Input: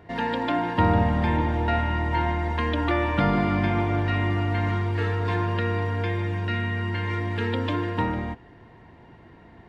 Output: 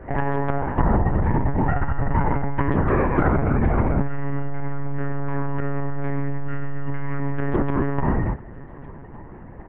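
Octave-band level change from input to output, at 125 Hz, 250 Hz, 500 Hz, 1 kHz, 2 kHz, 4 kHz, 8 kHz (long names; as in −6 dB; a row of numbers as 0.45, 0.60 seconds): +1.5 dB, +2.0 dB, +1.5 dB, 0.0 dB, −3.5 dB, below −15 dB, can't be measured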